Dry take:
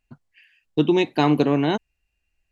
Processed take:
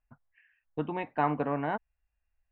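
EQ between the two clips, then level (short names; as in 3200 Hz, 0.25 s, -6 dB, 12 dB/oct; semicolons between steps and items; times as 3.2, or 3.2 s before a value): LPF 1800 Hz 24 dB/oct; bell 170 Hz -9 dB 1.7 oct; bell 360 Hz -14 dB 0.54 oct; -3.0 dB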